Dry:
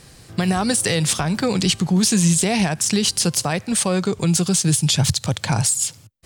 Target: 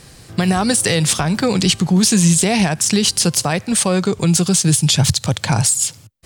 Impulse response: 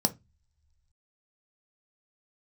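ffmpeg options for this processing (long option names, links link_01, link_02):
-af "volume=3.5dB"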